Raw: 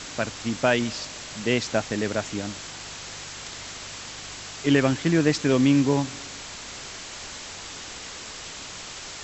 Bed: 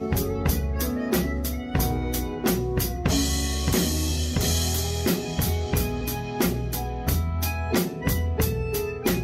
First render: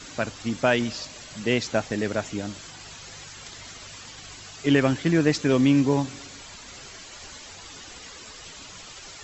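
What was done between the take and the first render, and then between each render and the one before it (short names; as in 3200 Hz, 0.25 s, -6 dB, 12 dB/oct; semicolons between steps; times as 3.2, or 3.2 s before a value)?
denoiser 10 dB, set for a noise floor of -39 dBFS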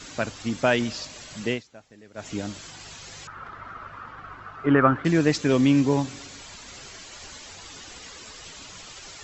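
1.45–2.32 dip -23 dB, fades 0.18 s; 3.27–5.05 synth low-pass 1300 Hz, resonance Q 5.8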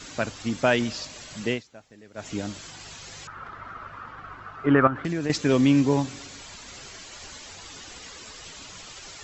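4.87–5.3 compressor, threshold -24 dBFS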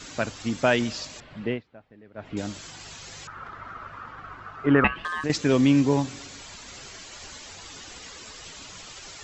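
1.2–2.37 air absorption 440 m; 4.84–5.24 ring modulator 1400 Hz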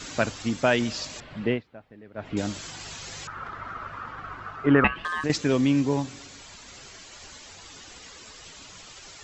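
vocal rider within 3 dB 0.5 s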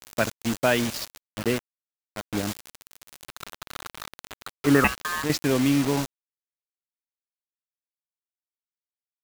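bit-crush 5-bit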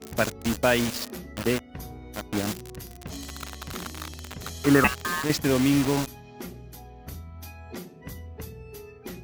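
add bed -15.5 dB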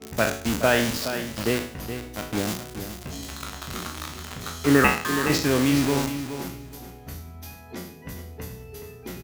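spectral trails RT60 0.52 s; feedback echo 0.42 s, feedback 21%, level -10 dB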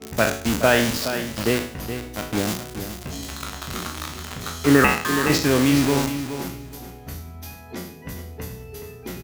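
gain +3 dB; limiter -3 dBFS, peak gain reduction 3 dB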